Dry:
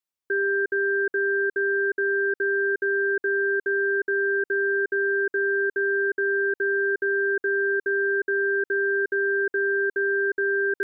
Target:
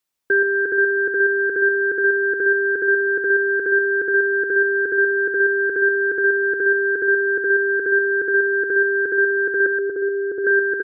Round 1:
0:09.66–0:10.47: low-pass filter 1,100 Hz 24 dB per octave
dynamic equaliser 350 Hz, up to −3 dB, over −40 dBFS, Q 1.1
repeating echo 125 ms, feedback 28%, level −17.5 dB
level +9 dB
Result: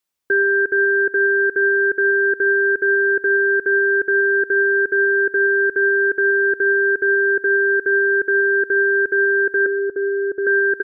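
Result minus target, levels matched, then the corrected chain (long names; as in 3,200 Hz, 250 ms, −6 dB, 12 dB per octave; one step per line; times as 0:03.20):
echo-to-direct −11 dB
0:09.66–0:10.47: low-pass filter 1,100 Hz 24 dB per octave
dynamic equaliser 350 Hz, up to −3 dB, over −40 dBFS, Q 1.1
repeating echo 125 ms, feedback 28%, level −6.5 dB
level +9 dB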